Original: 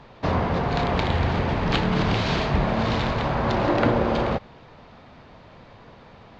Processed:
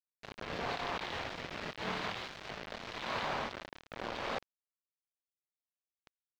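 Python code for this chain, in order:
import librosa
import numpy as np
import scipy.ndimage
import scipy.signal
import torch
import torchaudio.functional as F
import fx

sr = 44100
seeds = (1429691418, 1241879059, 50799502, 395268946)

y = fx.highpass(x, sr, hz=1300.0, slope=6)
y = fx.peak_eq(y, sr, hz=4600.0, db=5.0, octaves=1.1)
y = fx.over_compress(y, sr, threshold_db=-37.0, ratio=-1.0)
y = fx.rotary_switch(y, sr, hz=0.85, then_hz=8.0, switch_at_s=5.07)
y = fx.quant_dither(y, sr, seeds[0], bits=6, dither='none')
y = fx.air_absorb(y, sr, metres=210.0)
y = y * librosa.db_to_amplitude(1.5)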